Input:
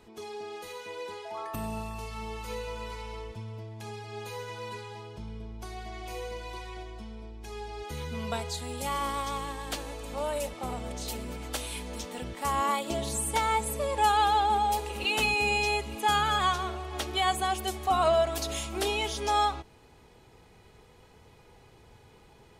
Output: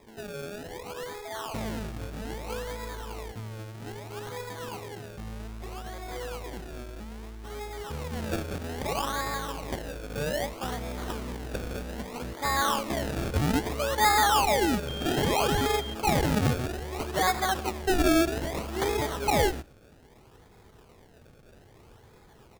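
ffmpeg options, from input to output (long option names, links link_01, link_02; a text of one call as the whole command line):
ffmpeg -i in.wav -filter_complex "[0:a]acrusher=samples=30:mix=1:aa=0.000001:lfo=1:lforange=30:lforate=0.62,asettb=1/sr,asplit=3[link_01][link_02][link_03];[link_01]atrim=end=14.884[link_04];[link_02]atrim=start=14.88:end=15.94,asetpts=PTS-STARTPTS,afade=type=in:duration=0.004:curve=qsin,afade=type=out:start_time=1.056:duration=0.004:curve=qsin,aeval=exprs='val(0)+0.0112*sin(2*PI*3200*n/s)':channel_layout=same[link_05];[link_03]atrim=start=15.936[link_06];[link_04][link_05]acrossfade=duration=0.004:curve1=hsin:curve2=qsin[link_07];[link_07][link_06]acrossfade=duration=0.004:curve1=qsin:curve2=hsin,aecho=1:1:113:0.0794,volume=1.5dB" out.wav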